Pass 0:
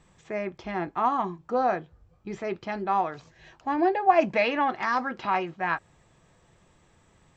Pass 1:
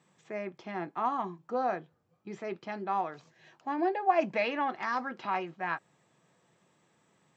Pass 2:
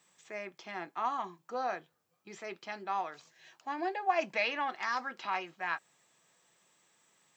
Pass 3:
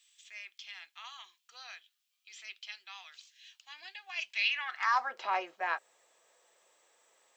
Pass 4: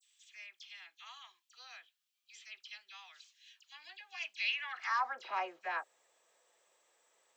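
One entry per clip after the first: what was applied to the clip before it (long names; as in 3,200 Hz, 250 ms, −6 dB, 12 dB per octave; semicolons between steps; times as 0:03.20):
high-pass filter 140 Hz 24 dB per octave; level −6 dB
spectral tilt +3.5 dB per octave; level −2.5 dB
high-pass filter sweep 3,100 Hz → 510 Hz, 0:04.45–0:05.20
all-pass dispersion lows, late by 56 ms, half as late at 2,600 Hz; level −4.5 dB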